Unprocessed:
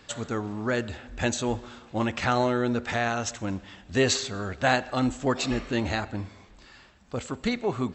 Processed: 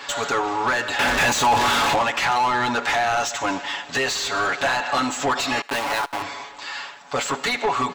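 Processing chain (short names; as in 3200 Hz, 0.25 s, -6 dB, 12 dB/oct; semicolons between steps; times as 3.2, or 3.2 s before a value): 5.61–6.22 level-crossing sampler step -29.5 dBFS; tilt +3 dB/oct; comb 7.1 ms, depth 92%; in parallel at +2 dB: limiter -14 dBFS, peak gain reduction 10.5 dB; on the sum: compressor, threshold -20 dBFS, peak gain reduction 11 dB; 0.99–1.96 power-law curve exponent 0.35; bell 900 Hz +7.5 dB 0.64 oct; overdrive pedal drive 23 dB, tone 2500 Hz, clips at -4.5 dBFS; on a send: thinning echo 75 ms, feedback 41%, high-pass 880 Hz, level -23 dB; on the sum: mismatched tape noise reduction decoder only; gain -7 dB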